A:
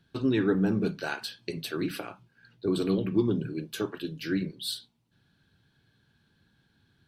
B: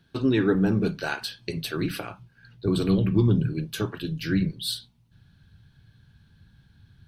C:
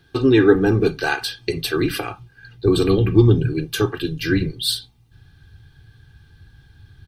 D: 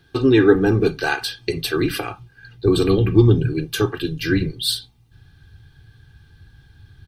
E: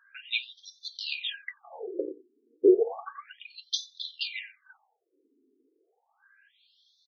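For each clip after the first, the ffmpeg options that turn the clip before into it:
-af "bandreject=f=7400:w=16,asubboost=boost=6.5:cutoff=130,volume=1.58"
-af "aecho=1:1:2.5:0.69,volume=2.11"
-af anull
-filter_complex "[0:a]asplit=2[s0][s1];[s1]adelay=90,highpass=300,lowpass=3400,asoftclip=type=hard:threshold=0.299,volume=0.2[s2];[s0][s2]amix=inputs=2:normalize=0,afftfilt=real='re*between(b*sr/1024,320*pow(4800/320,0.5+0.5*sin(2*PI*0.32*pts/sr))/1.41,320*pow(4800/320,0.5+0.5*sin(2*PI*0.32*pts/sr))*1.41)':imag='im*between(b*sr/1024,320*pow(4800/320,0.5+0.5*sin(2*PI*0.32*pts/sr))/1.41,320*pow(4800/320,0.5+0.5*sin(2*PI*0.32*pts/sr))*1.41)':win_size=1024:overlap=0.75"

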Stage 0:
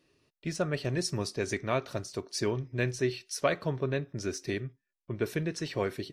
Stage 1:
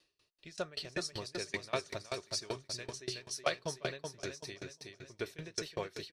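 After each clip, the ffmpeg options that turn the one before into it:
-af "equalizer=f=125:t=o:w=1:g=-6,equalizer=f=250:t=o:w=1:g=-8,equalizer=f=4000:t=o:w=1:g=8,equalizer=f=8000:t=o:w=1:g=4,aecho=1:1:371|742|1113|1484|1855|2226:0.531|0.244|0.112|0.0517|0.0238|0.0109,aeval=exprs='val(0)*pow(10,-25*if(lt(mod(5.2*n/s,1),2*abs(5.2)/1000),1-mod(5.2*n/s,1)/(2*abs(5.2)/1000),(mod(5.2*n/s,1)-2*abs(5.2)/1000)/(1-2*abs(5.2)/1000))/20)':c=same,volume=0.891"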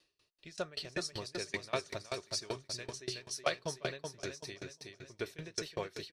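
-af anull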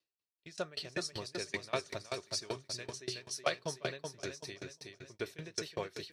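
-af "highpass=67,agate=range=0.0631:threshold=0.00158:ratio=16:detection=peak,areverse,acompressor=mode=upward:threshold=0.00158:ratio=2.5,areverse"

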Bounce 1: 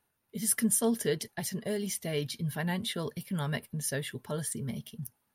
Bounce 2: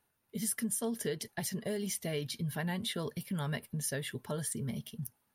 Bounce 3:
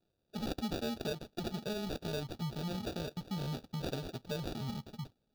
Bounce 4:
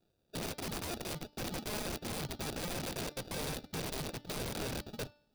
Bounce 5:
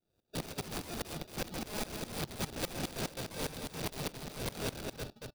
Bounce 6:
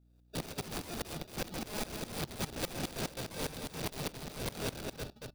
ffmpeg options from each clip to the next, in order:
-af "acompressor=threshold=0.0251:ratio=4"
-af "acrusher=samples=42:mix=1:aa=0.000001,equalizer=f=2000:t=o:w=1:g=-9,equalizer=f=4000:t=o:w=1:g=10,equalizer=f=8000:t=o:w=1:g=-8,volume=0.794"
-af "aeval=exprs='(mod(70.8*val(0)+1,2)-1)/70.8':c=same,bandreject=f=294.6:t=h:w=4,bandreject=f=589.2:t=h:w=4,bandreject=f=883.8:t=h:w=4,bandreject=f=1178.4:t=h:w=4,bandreject=f=1473:t=h:w=4,bandreject=f=1767.6:t=h:w=4,bandreject=f=2062.2:t=h:w=4,bandreject=f=2356.8:t=h:w=4,bandreject=f=2651.4:t=h:w=4,bandreject=f=2946:t=h:w=4,bandreject=f=3240.6:t=h:w=4,bandreject=f=3535.2:t=h:w=4,bandreject=f=3829.8:t=h:w=4,bandreject=f=4124.4:t=h:w=4,bandreject=f=4419:t=h:w=4,bandreject=f=4713.6:t=h:w=4,bandreject=f=5008.2:t=h:w=4,bandreject=f=5302.8:t=h:w=4,bandreject=f=5597.4:t=h:w=4,volume=1.5"
-af "aecho=1:1:50|227:0.126|0.501,aeval=exprs='val(0)*pow(10,-19*if(lt(mod(-4.9*n/s,1),2*abs(-4.9)/1000),1-mod(-4.9*n/s,1)/(2*abs(-4.9)/1000),(mod(-4.9*n/s,1)-2*abs(-4.9)/1000)/(1-2*abs(-4.9)/1000))/20)':c=same,volume=1.88"
-af "aeval=exprs='val(0)+0.000631*(sin(2*PI*60*n/s)+sin(2*PI*2*60*n/s)/2+sin(2*PI*3*60*n/s)/3+sin(2*PI*4*60*n/s)/4+sin(2*PI*5*60*n/s)/5)':c=same"

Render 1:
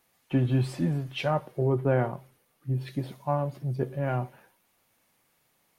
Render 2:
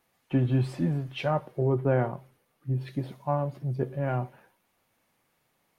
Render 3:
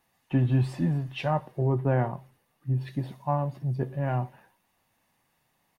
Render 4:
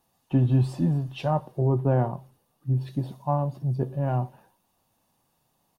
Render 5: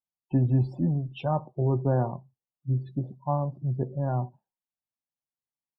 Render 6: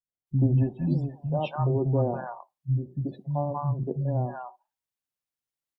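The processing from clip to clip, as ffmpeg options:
-af "highshelf=f=3600:g=-6.5"
-af "aecho=1:1:1.1:0.34"
-af "equalizer=f=2000:w=1.7:g=-13,volume=1.33"
-af "aecho=1:1:81:0.0631,afftdn=nr=32:nf=-40,volume=0.794"
-filter_complex "[0:a]acrossover=split=200|810[s0][s1][s2];[s1]adelay=80[s3];[s2]adelay=270[s4];[s0][s3][s4]amix=inputs=3:normalize=0,volume=1.33"

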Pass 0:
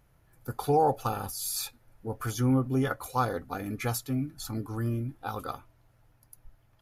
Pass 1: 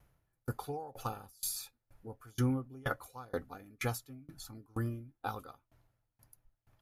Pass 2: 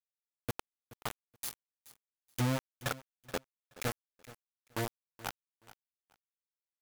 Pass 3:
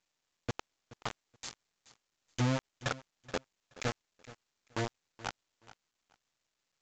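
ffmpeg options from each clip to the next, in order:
-af "aeval=exprs='val(0)*pow(10,-29*if(lt(mod(2.1*n/s,1),2*abs(2.1)/1000),1-mod(2.1*n/s,1)/(2*abs(2.1)/1000),(mod(2.1*n/s,1)-2*abs(2.1)/1000)/(1-2*abs(2.1)/1000))/20)':c=same"
-af "acrusher=bits=4:mix=0:aa=0.000001,aecho=1:1:426|852:0.126|0.0252,volume=0.841"
-af "volume=1.12" -ar 16000 -c:a pcm_mulaw

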